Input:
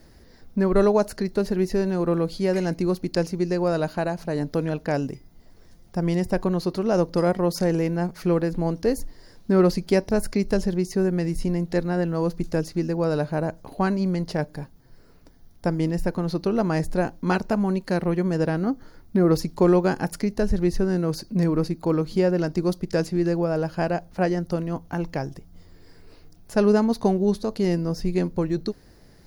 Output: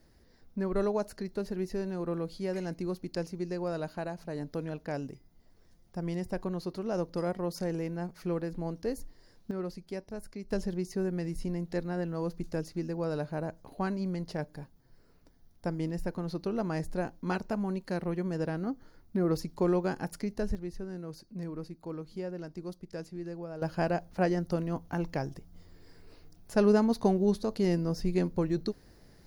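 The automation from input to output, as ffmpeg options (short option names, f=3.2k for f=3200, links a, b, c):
-af "asetnsamples=n=441:p=0,asendcmd='9.51 volume volume -18.5dB;10.51 volume volume -9.5dB;20.55 volume volume -17dB;23.62 volume volume -5dB',volume=-11dB"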